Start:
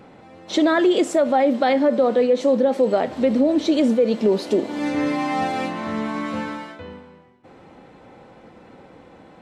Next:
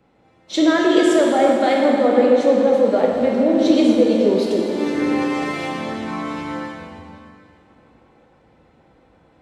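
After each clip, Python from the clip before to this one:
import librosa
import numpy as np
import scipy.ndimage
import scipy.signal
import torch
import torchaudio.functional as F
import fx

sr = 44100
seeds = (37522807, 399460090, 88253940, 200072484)

y = fx.rev_plate(x, sr, seeds[0], rt60_s=3.6, hf_ratio=0.85, predelay_ms=0, drr_db=-2.5)
y = fx.band_widen(y, sr, depth_pct=40)
y = F.gain(torch.from_numpy(y), -1.5).numpy()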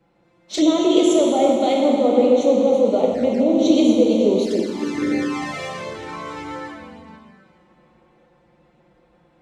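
y = fx.env_flanger(x, sr, rest_ms=5.9, full_db=-13.5)
y = fx.dynamic_eq(y, sr, hz=6400.0, q=1.5, threshold_db=-51.0, ratio=4.0, max_db=6)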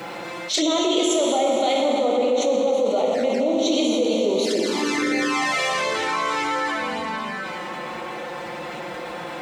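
y = fx.highpass(x, sr, hz=950.0, slope=6)
y = fx.env_flatten(y, sr, amount_pct=70)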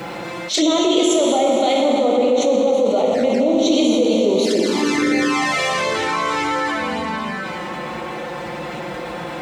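y = fx.low_shelf(x, sr, hz=210.0, db=9.5)
y = fx.attack_slew(y, sr, db_per_s=180.0)
y = F.gain(torch.from_numpy(y), 2.5).numpy()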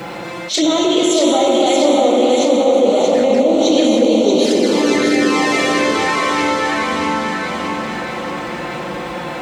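y = fx.echo_feedback(x, sr, ms=631, feedback_pct=54, wet_db=-4.5)
y = F.gain(torch.from_numpy(y), 1.5).numpy()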